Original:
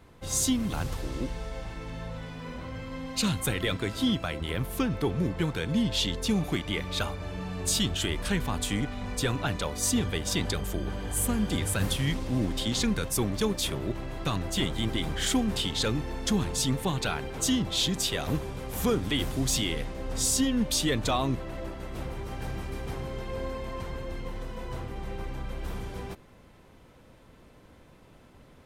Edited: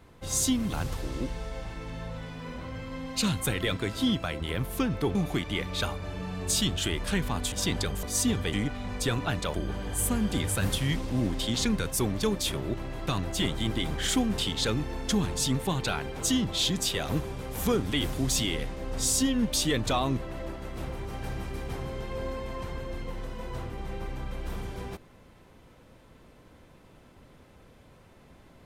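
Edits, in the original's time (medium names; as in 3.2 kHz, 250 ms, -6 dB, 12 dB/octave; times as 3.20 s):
5.15–6.33 s: delete
8.70–9.71 s: swap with 10.21–10.72 s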